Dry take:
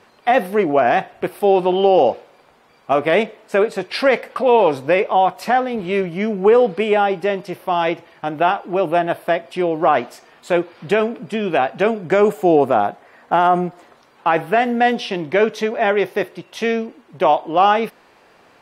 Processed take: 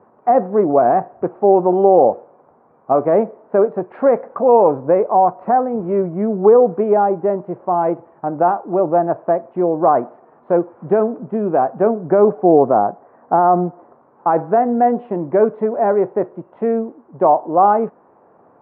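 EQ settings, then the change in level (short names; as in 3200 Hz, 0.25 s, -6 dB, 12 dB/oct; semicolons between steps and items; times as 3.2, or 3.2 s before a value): HPF 99 Hz; LPF 1100 Hz 24 dB/oct; air absorption 73 m; +2.5 dB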